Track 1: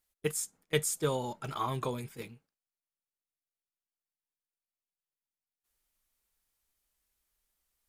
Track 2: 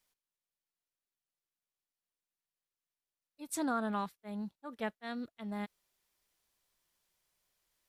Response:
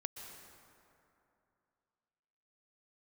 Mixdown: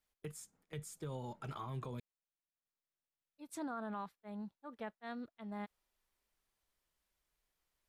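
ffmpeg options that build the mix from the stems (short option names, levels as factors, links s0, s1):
-filter_complex "[0:a]acrossover=split=190[s0][s1];[s1]acompressor=threshold=0.00891:ratio=3[s2];[s0][s2]amix=inputs=2:normalize=0,volume=0.75,asplit=3[s3][s4][s5];[s3]atrim=end=2,asetpts=PTS-STARTPTS,afade=t=out:st=1.996:d=0.004:c=hsin[s6];[s4]atrim=start=2:end=2.65,asetpts=PTS-STARTPTS,volume=0[s7];[s5]atrim=start=2.65,asetpts=PTS-STARTPTS,afade=t=in:d=0.004:c=hsin[s8];[s6][s7][s8]concat=n=3:v=0:a=1[s9];[1:a]adynamicequalizer=threshold=0.00447:dfrequency=940:dqfactor=0.8:tfrequency=940:tqfactor=0.8:attack=5:release=100:ratio=0.375:range=2:mode=boostabove:tftype=bell,volume=0.531[s10];[s9][s10]amix=inputs=2:normalize=0,highshelf=f=4400:g=-8.5,alimiter=level_in=3.35:limit=0.0631:level=0:latency=1:release=67,volume=0.299"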